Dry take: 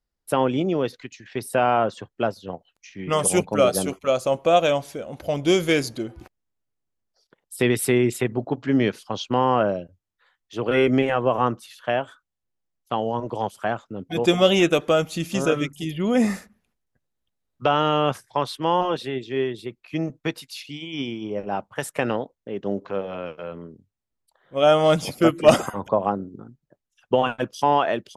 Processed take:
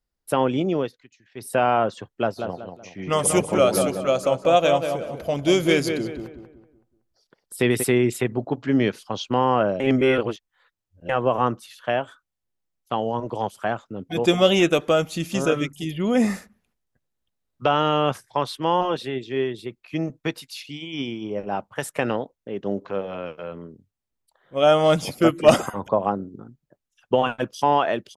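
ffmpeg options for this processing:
ffmpeg -i in.wav -filter_complex "[0:a]asplit=3[link_01][link_02][link_03];[link_01]afade=type=out:start_time=2.37:duration=0.02[link_04];[link_02]asplit=2[link_05][link_06];[link_06]adelay=188,lowpass=frequency=2100:poles=1,volume=-6dB,asplit=2[link_07][link_08];[link_08]adelay=188,lowpass=frequency=2100:poles=1,volume=0.38,asplit=2[link_09][link_10];[link_10]adelay=188,lowpass=frequency=2100:poles=1,volume=0.38,asplit=2[link_11][link_12];[link_12]adelay=188,lowpass=frequency=2100:poles=1,volume=0.38,asplit=2[link_13][link_14];[link_14]adelay=188,lowpass=frequency=2100:poles=1,volume=0.38[link_15];[link_05][link_07][link_09][link_11][link_13][link_15]amix=inputs=6:normalize=0,afade=type=in:start_time=2.37:duration=0.02,afade=type=out:start_time=7.82:duration=0.02[link_16];[link_03]afade=type=in:start_time=7.82:duration=0.02[link_17];[link_04][link_16][link_17]amix=inputs=3:normalize=0,asplit=5[link_18][link_19][link_20][link_21][link_22];[link_18]atrim=end=0.93,asetpts=PTS-STARTPTS,afade=type=out:start_time=0.8:duration=0.13:silence=0.199526[link_23];[link_19]atrim=start=0.93:end=1.35,asetpts=PTS-STARTPTS,volume=-14dB[link_24];[link_20]atrim=start=1.35:end=9.802,asetpts=PTS-STARTPTS,afade=type=in:duration=0.13:silence=0.199526[link_25];[link_21]atrim=start=9.798:end=11.092,asetpts=PTS-STARTPTS,areverse[link_26];[link_22]atrim=start=11.088[link_27];[link_23][link_24][link_25]concat=n=3:v=0:a=1[link_28];[link_28][link_26]acrossfade=duration=0.004:curve1=hsin:curve2=hsin[link_29];[link_29][link_27]acrossfade=duration=0.004:curve1=hsin:curve2=hsin" out.wav

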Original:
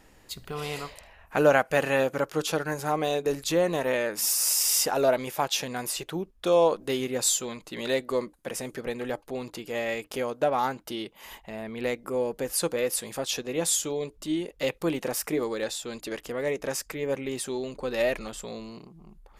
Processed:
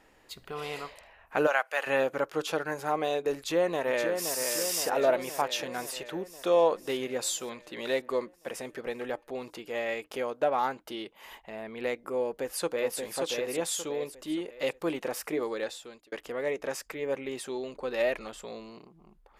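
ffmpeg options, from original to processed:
ffmpeg -i in.wav -filter_complex "[0:a]asplit=3[link_01][link_02][link_03];[link_01]afade=type=out:start_time=1.46:duration=0.02[link_04];[link_02]highpass=850,afade=type=in:start_time=1.46:duration=0.02,afade=type=out:start_time=1.86:duration=0.02[link_05];[link_03]afade=type=in:start_time=1.86:duration=0.02[link_06];[link_04][link_05][link_06]amix=inputs=3:normalize=0,asplit=2[link_07][link_08];[link_08]afade=type=in:start_time=3.35:duration=0.01,afade=type=out:start_time=4.37:duration=0.01,aecho=0:1:520|1040|1560|2080|2600|3120|3640|4160|4680|5200:0.501187|0.325772|0.211752|0.137639|0.0894651|0.0581523|0.037799|0.0245693|0.0159701|0.0103805[link_09];[link_07][link_09]amix=inputs=2:normalize=0,asplit=2[link_10][link_11];[link_11]afade=type=in:start_time=12.23:duration=0.01,afade=type=out:start_time=12.98:duration=0.01,aecho=0:1:580|1160|1740|2320|2900:0.630957|0.252383|0.100953|0.0403813|0.0161525[link_12];[link_10][link_12]amix=inputs=2:normalize=0,asplit=2[link_13][link_14];[link_13]atrim=end=16.12,asetpts=PTS-STARTPTS,afade=type=out:start_time=15.61:duration=0.51[link_15];[link_14]atrim=start=16.12,asetpts=PTS-STARTPTS,afade=type=in:duration=0.004:curve=hsin[link_16];[link_15][link_16]concat=n=2:v=0:a=1,bass=frequency=250:gain=-9,treble=frequency=4000:gain=-7,volume=-1.5dB" out.wav

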